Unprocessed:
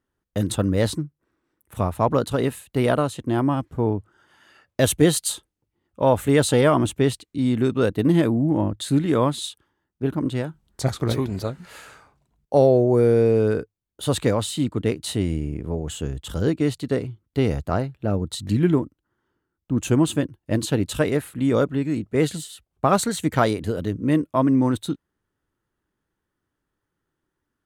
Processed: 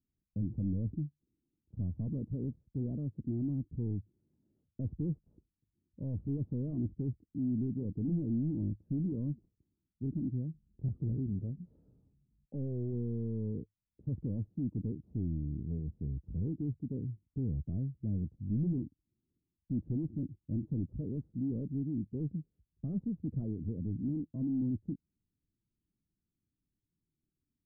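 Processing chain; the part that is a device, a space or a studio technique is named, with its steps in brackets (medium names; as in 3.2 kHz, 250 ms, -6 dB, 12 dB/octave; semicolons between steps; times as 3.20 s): overdriven synthesiser ladder filter (saturation -23 dBFS, distortion -7 dB; four-pole ladder low-pass 300 Hz, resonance 25%)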